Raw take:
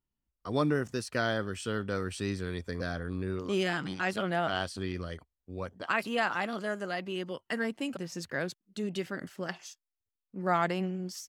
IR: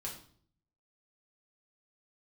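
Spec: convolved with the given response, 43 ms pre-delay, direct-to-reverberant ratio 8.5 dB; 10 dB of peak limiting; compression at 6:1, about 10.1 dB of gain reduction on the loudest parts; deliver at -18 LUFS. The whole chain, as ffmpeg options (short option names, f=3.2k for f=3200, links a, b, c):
-filter_complex "[0:a]acompressor=threshold=-34dB:ratio=6,alimiter=level_in=7dB:limit=-24dB:level=0:latency=1,volume=-7dB,asplit=2[a][b];[1:a]atrim=start_sample=2205,adelay=43[c];[b][c]afir=irnorm=-1:irlink=0,volume=-7.5dB[d];[a][d]amix=inputs=2:normalize=0,volume=23.5dB"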